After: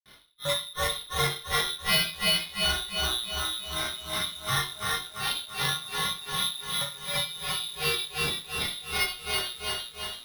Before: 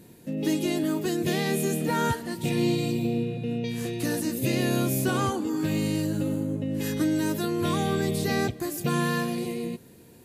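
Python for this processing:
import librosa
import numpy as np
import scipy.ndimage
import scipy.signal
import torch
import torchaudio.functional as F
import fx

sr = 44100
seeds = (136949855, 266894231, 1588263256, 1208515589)

p1 = fx.highpass(x, sr, hz=770.0, slope=6)
p2 = fx.high_shelf(p1, sr, hz=2400.0, db=9.5)
p3 = fx.rider(p2, sr, range_db=10, speed_s=0.5)
p4 = p2 + F.gain(torch.from_numpy(p3), -2.0).numpy()
p5 = fx.granulator(p4, sr, seeds[0], grain_ms=207.0, per_s=2.7, spray_ms=100.0, spread_st=0)
p6 = 10.0 ** (-20.5 / 20.0) * np.tanh(p5 / 10.0 ** (-20.5 / 20.0))
p7 = p6 + fx.echo_feedback(p6, sr, ms=337, feedback_pct=45, wet_db=-4.0, dry=0)
p8 = fx.room_shoebox(p7, sr, seeds[1], volume_m3=460.0, walls='furnished', distance_m=2.7)
p9 = fx.freq_invert(p8, sr, carrier_hz=3900)
p10 = np.repeat(scipy.signal.resample_poly(p9, 1, 6), 6)[:len(p9)]
y = fx.echo_crushed(p10, sr, ms=346, feedback_pct=55, bits=8, wet_db=-5)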